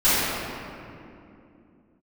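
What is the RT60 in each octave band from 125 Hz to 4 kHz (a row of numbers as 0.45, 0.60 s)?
3.2, 4.2, 3.0, 2.4, 2.1, 1.5 s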